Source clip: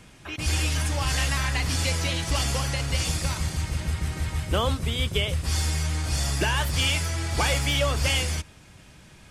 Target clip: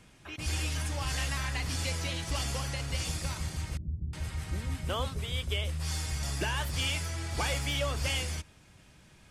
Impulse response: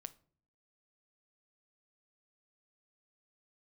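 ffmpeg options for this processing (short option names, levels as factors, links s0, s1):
-filter_complex "[0:a]asettb=1/sr,asplit=3[s0][s1][s2];[s0]atrim=end=3.774[s3];[s1]atrim=start=3.77:end=6.23,asetpts=PTS-STARTPTS,afade=t=in:d=0.004:c=qsin,afade=t=out:st=2.456:d=0.004:c=qsin,acrossover=split=320[s4][s5];[s5]adelay=360[s6];[s4][s6]amix=inputs=2:normalize=0,atrim=end_sample=108486[s7];[s2]atrim=start=6.226[s8];[s3][s7]acrossfade=d=0.004:c1=hsin:c2=qsin[s9];[s9][s8]acrossfade=d=0.004:c1=qsin:c2=hsin,volume=0.422"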